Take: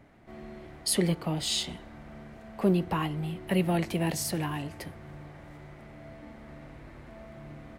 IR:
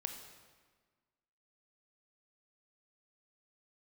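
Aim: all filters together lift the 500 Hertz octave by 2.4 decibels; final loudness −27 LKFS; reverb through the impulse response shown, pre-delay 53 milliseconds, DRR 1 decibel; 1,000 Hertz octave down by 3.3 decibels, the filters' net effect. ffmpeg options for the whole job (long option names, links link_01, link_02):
-filter_complex "[0:a]equalizer=frequency=500:width_type=o:gain=5,equalizer=frequency=1000:width_type=o:gain=-6.5,asplit=2[link_01][link_02];[1:a]atrim=start_sample=2205,adelay=53[link_03];[link_02][link_03]afir=irnorm=-1:irlink=0,volume=0dB[link_04];[link_01][link_04]amix=inputs=2:normalize=0,volume=-0.5dB"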